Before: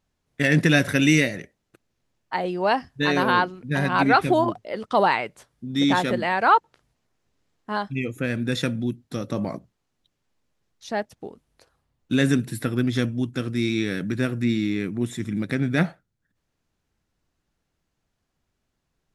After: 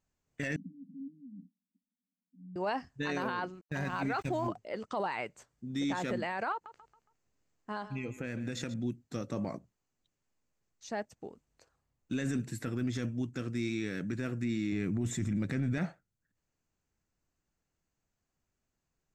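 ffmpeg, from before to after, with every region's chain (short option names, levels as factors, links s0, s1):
-filter_complex "[0:a]asettb=1/sr,asplit=3[s0][s1][s2];[s0]atrim=end=0.564[s3];[s1]atrim=start=0.56:end=2.56,asetpts=PTS-STARTPTS,afade=t=in:d=0.004:c=qsin,afade=t=out:st=1.996:d=0.004:c=qsin,acompressor=threshold=0.0447:ratio=6:attack=3.2:release=140:knee=1:detection=peak,asuperpass=centerf=220:order=12:qfactor=2.1[s4];[s2]atrim=start=2.556[s5];[s3][s4]acrossfade=d=0.004:c1=hsin:c2=qsin[s6];[s6][s5]acrossfade=d=0.004:c1=qsin:c2=hsin,asettb=1/sr,asplit=3[s7][s8][s9];[s7]atrim=end=3.614[s10];[s8]atrim=start=3.61:end=4.48,asetpts=PTS-STARTPTS,afade=t=in:d=0.004:c=qsin,afade=t=out:st=0.866:d=0.004:c=qsin,agate=range=0.112:threshold=0.0501:ratio=16:release=100:detection=peak,asubboost=boost=6.5:cutoff=170,aeval=exprs='sgn(val(0))*max(abs(val(0))-0.00596,0)':c=same[s11];[s9]atrim=start=4.476[s12];[s10][s11]acrossfade=d=0.004:c1=hsin:c2=qsin[s13];[s13][s12]acrossfade=d=0.004:c1=qsin:c2=hsin,asettb=1/sr,asplit=3[s14][s15][s16];[s14]atrim=end=6.524[s17];[s15]atrim=start=6.52:end=8.74,asetpts=PTS-STARTPTS,afade=t=in:d=0.004:c=qsin,afade=t=out:st=2.216:d=0.004:c=qsin,acompressor=threshold=0.0631:ratio=10:attack=3.2:release=140:knee=1:detection=peak,aecho=1:1:138|276|414|552:0.211|0.0803|0.0305|0.0116,atrim=end_sample=97902[s18];[s16]atrim=start=8.736[s19];[s17][s18]acrossfade=d=0.004:c1=hsin:c2=qsin[s20];[s20][s19]acrossfade=d=0.004:c1=qsin:c2=hsin,asettb=1/sr,asplit=3[s21][s22][s23];[s21]atrim=end=14.724[s24];[s22]atrim=start=14.72:end=15.78,asetpts=PTS-STARTPTS,afade=t=in:d=0.004:c=qsin,afade=t=out:st=1.056:d=0.004:c=qsin,lowshelf=f=100:g=12,acontrast=30[s25];[s23]atrim=start=15.776[s26];[s24][s25]acrossfade=d=0.004:c1=hsin:c2=qsin[s27];[s27][s26]acrossfade=d=0.004:c1=qsin:c2=hsin,superequalizer=13b=0.631:15b=1.78:16b=0.316,alimiter=limit=0.141:level=0:latency=1:release=11,volume=0.398"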